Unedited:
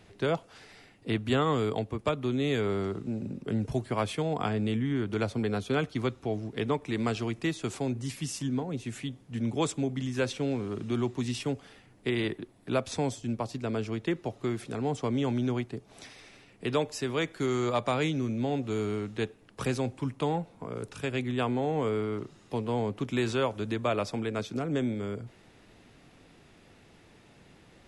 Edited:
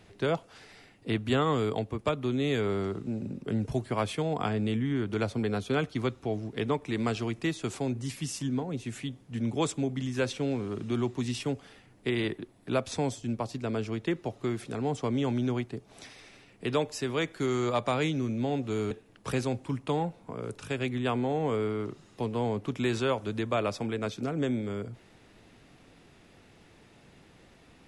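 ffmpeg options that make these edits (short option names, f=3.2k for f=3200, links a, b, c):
-filter_complex "[0:a]asplit=2[a][b];[a]atrim=end=18.912[c];[b]atrim=start=19.238[d];[c][d]acrossfade=d=0.004:c1=hsin:c2=hsin"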